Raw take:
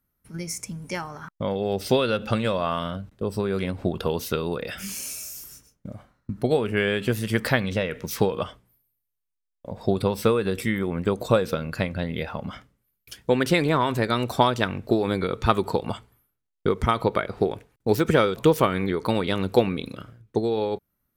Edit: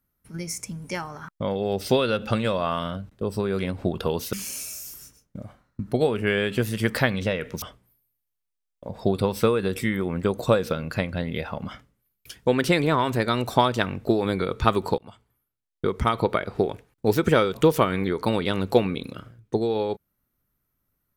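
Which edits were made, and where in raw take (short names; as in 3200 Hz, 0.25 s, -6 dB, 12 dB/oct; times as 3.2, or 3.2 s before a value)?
4.33–4.83 cut
8.12–8.44 cut
15.8–16.98 fade in, from -21.5 dB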